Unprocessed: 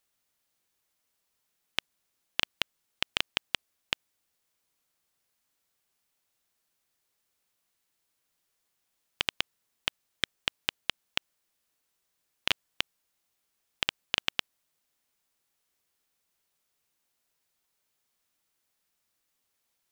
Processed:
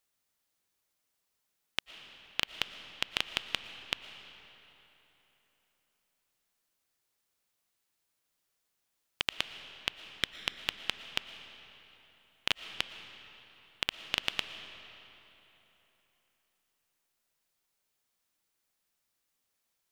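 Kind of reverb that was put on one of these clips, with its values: digital reverb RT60 3.6 s, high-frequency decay 0.75×, pre-delay 75 ms, DRR 10 dB; gain -2.5 dB

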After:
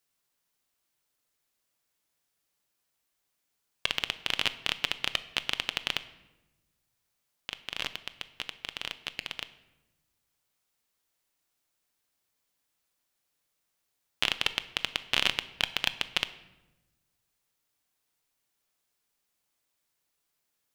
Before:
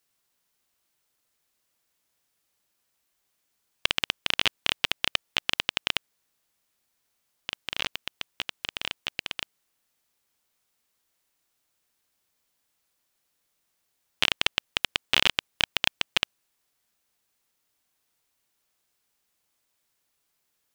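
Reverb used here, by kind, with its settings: shoebox room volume 470 m³, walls mixed, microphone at 0.33 m; gain -4 dB

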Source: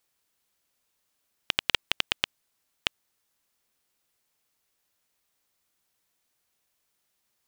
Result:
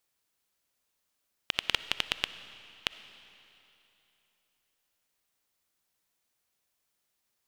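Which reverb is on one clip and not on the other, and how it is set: digital reverb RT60 3 s, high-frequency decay 0.95×, pre-delay 20 ms, DRR 13 dB; gain -3.5 dB

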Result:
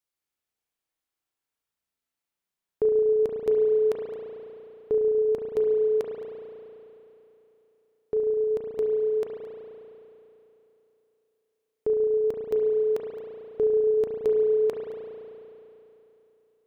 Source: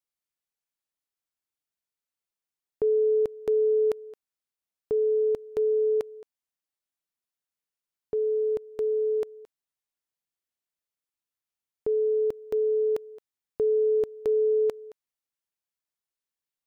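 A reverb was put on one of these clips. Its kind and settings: spring tank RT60 3.2 s, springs 34 ms, chirp 40 ms, DRR -0.5 dB; gain +1.5 dB

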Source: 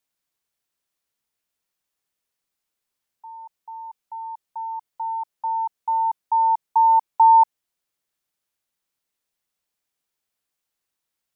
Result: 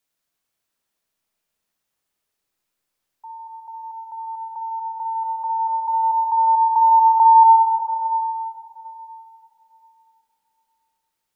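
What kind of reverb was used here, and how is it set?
digital reverb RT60 3.5 s, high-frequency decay 0.25×, pre-delay 10 ms, DRR 1 dB; gain +2 dB

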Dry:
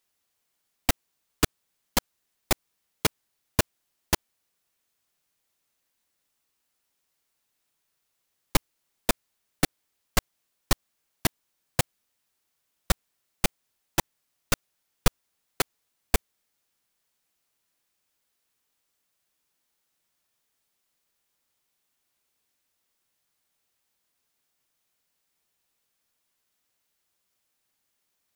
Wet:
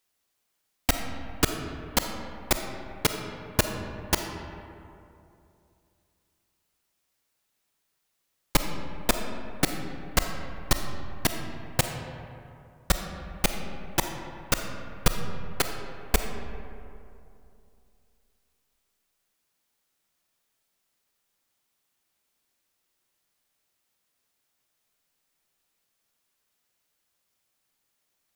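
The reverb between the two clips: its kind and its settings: digital reverb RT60 2.7 s, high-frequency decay 0.45×, pre-delay 5 ms, DRR 5 dB

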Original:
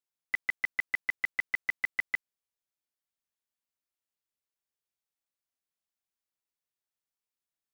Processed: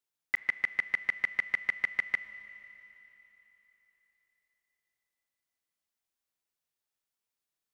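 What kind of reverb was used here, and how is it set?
Schroeder reverb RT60 3.7 s, combs from 29 ms, DRR 14 dB; gain +2.5 dB

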